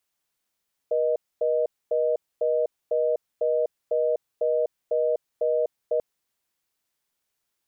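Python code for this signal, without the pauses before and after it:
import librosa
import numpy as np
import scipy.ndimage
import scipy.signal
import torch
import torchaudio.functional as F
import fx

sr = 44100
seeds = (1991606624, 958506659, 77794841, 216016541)

y = fx.call_progress(sr, length_s=5.09, kind='reorder tone', level_db=-23.0)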